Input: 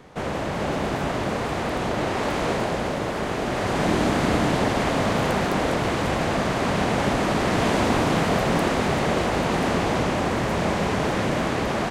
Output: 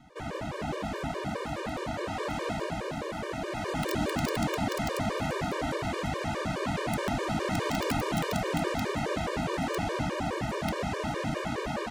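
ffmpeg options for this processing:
ffmpeg -i in.wav -af "aeval=exprs='(mod(3.55*val(0)+1,2)-1)/3.55':channel_layout=same,afftfilt=real='re*gt(sin(2*PI*4.8*pts/sr)*(1-2*mod(floor(b*sr/1024/310),2)),0)':imag='im*gt(sin(2*PI*4.8*pts/sr)*(1-2*mod(floor(b*sr/1024/310),2)),0)':win_size=1024:overlap=0.75,volume=-5dB" out.wav

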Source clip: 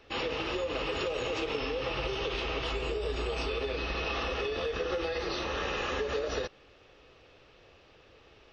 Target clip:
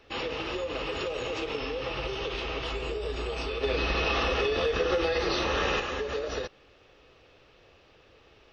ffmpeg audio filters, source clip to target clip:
ffmpeg -i in.wav -filter_complex "[0:a]asettb=1/sr,asplit=3[link_01][link_02][link_03];[link_01]atrim=end=3.634[link_04];[link_02]atrim=start=3.63:end=5.8,asetpts=PTS-STARTPTS,afade=type=in:duration=0.004:curve=qsin,afade=type=out:start_time=2.166:duration=0.004:curve=qsin,acontrast=47[link_05];[link_03]atrim=start=5.796[link_06];[link_04][link_05]acrossfade=duration=0.004:curve1=hsin:curve2=qsin[link_07];[link_07][link_06]acrossfade=duration=0.004:curve1=qsin:curve2=hsin" out.wav

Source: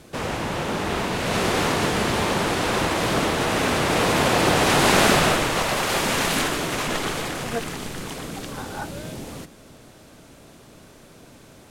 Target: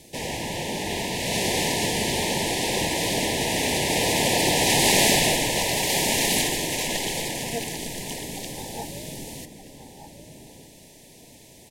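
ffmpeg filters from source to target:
ffmpeg -i in.wav -filter_complex "[0:a]asuperstop=centerf=1300:order=12:qfactor=1.8,highshelf=frequency=3300:gain=10,bandreject=frequency=50:width_type=h:width=6,bandreject=frequency=100:width_type=h:width=6,asplit=2[link_01][link_02];[link_02]adelay=1224,volume=-8dB,highshelf=frequency=4000:gain=-27.6[link_03];[link_01][link_03]amix=inputs=2:normalize=0,volume=-4dB" out.wav

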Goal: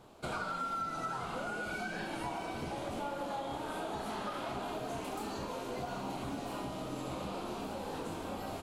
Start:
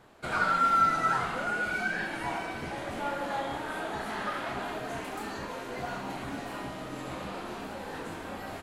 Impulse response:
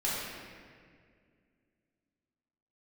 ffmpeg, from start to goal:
-af "equalizer=frequency=1800:width=2.2:gain=-11.5,acompressor=threshold=-36dB:ratio=6,volume=1dB"

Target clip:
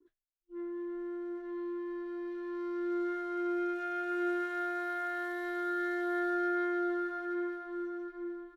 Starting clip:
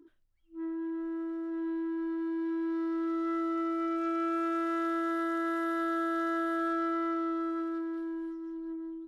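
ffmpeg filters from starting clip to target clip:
ffmpeg -i in.wav -filter_complex "[0:a]asplit=2[link_01][link_02];[link_02]adelay=820,lowpass=frequency=3700:poles=1,volume=-6.5dB,asplit=2[link_03][link_04];[link_04]adelay=820,lowpass=frequency=3700:poles=1,volume=0.27,asplit=2[link_05][link_06];[link_06]adelay=820,lowpass=frequency=3700:poles=1,volume=0.27[link_07];[link_01][link_03][link_05][link_07]amix=inputs=4:normalize=0,agate=range=-33dB:threshold=-53dB:ratio=3:detection=peak,asetrate=46746,aresample=44100,volume=-3.5dB" out.wav

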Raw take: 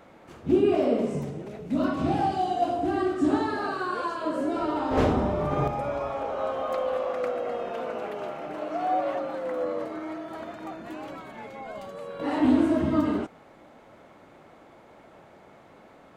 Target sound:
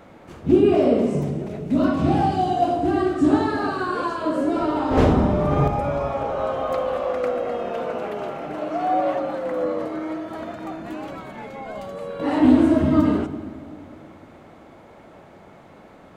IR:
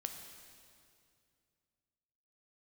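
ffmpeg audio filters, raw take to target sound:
-filter_complex "[0:a]asplit=2[link_01][link_02];[1:a]atrim=start_sample=2205,lowshelf=frequency=360:gain=10[link_03];[link_02][link_03]afir=irnorm=-1:irlink=0,volume=-2.5dB[link_04];[link_01][link_04]amix=inputs=2:normalize=0"

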